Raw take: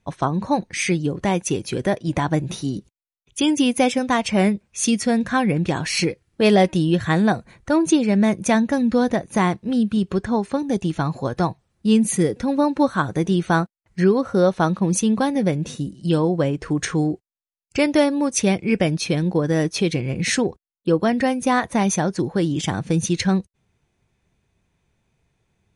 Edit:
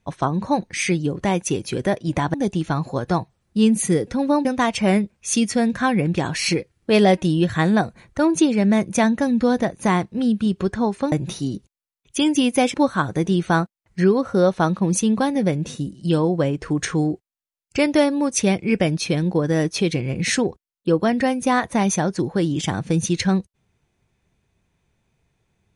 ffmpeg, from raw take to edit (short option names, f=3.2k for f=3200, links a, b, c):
-filter_complex "[0:a]asplit=5[a][b][c][d][e];[a]atrim=end=2.342[f];[b]atrim=start=10.628:end=12.742[g];[c]atrim=start=3.958:end=10.632[h];[d]atrim=start=2.338:end=3.962[i];[e]atrim=start=12.738[j];[f][g]acrossfade=d=0.004:c1=hsin:c2=hsin[k];[k][h]acrossfade=d=0.004:c1=hsin:c2=hsin[l];[l][i]acrossfade=d=0.004:c1=hsin:c2=hsin[m];[m][j]acrossfade=d=0.004:c1=hsin:c2=hsin"